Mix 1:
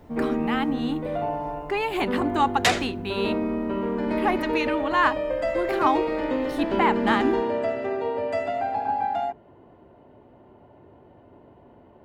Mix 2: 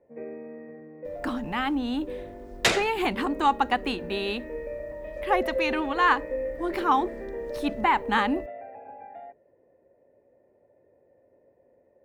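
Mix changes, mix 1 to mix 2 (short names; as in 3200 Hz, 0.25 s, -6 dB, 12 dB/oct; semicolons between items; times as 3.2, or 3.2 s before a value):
speech: entry +1.05 s; first sound: add vocal tract filter e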